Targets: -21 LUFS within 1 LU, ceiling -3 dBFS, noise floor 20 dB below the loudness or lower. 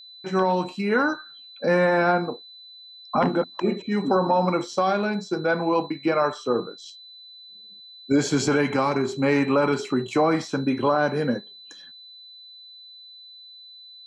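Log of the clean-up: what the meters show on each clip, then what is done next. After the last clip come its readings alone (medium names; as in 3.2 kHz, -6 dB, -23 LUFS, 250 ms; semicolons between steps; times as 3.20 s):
steady tone 4 kHz; tone level -43 dBFS; loudness -23.5 LUFS; peak level -11.5 dBFS; loudness target -21.0 LUFS
-> band-stop 4 kHz, Q 30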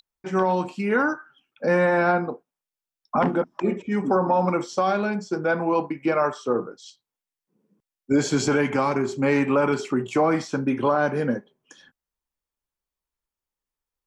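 steady tone not found; loudness -23.5 LUFS; peak level -11.5 dBFS; loudness target -21.0 LUFS
-> trim +2.5 dB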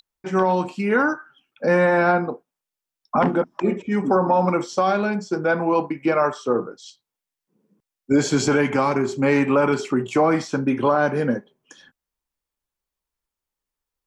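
loudness -21.0 LUFS; peak level -9.0 dBFS; noise floor -87 dBFS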